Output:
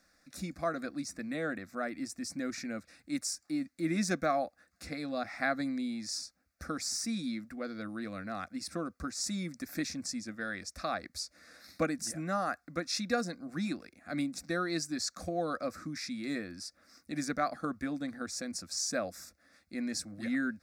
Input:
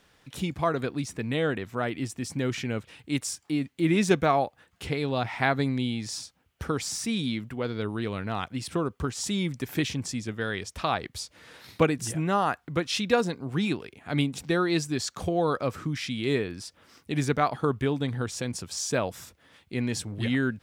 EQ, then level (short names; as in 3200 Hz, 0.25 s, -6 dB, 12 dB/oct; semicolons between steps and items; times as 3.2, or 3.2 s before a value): bell 4800 Hz +9 dB 0.99 oct; fixed phaser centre 620 Hz, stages 8; -5.0 dB